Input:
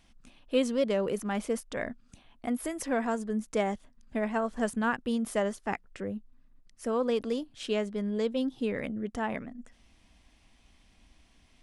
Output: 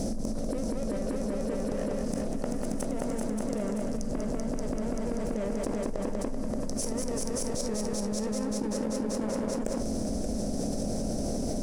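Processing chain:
compressor on every frequency bin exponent 0.6
gate with flip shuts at −26 dBFS, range −30 dB
elliptic band-stop filter 630–5,200 Hz
parametric band 170 Hz +3.5 dB 1 octave
leveller curve on the samples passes 3
high-shelf EQ 9,900 Hz −8.5 dB
echo machine with several playback heads 193 ms, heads all three, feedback 63%, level −8 dB
convolution reverb, pre-delay 4 ms, DRR 11 dB
envelope flattener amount 100%

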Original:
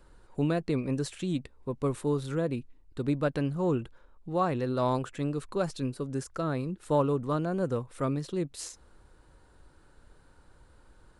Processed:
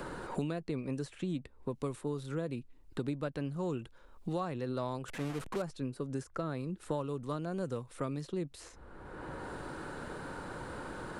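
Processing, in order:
0:05.08–0:05.62: linear delta modulator 64 kbit/s, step −29.5 dBFS
multiband upward and downward compressor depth 100%
level −7.5 dB

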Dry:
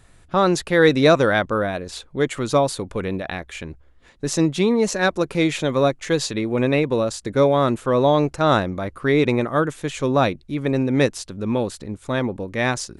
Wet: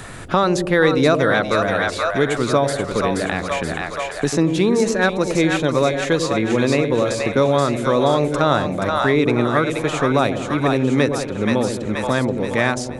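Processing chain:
parametric band 1,400 Hz +2.5 dB
echo with a time of its own for lows and highs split 600 Hz, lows 91 ms, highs 477 ms, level −6 dB
multiband upward and downward compressor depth 70%

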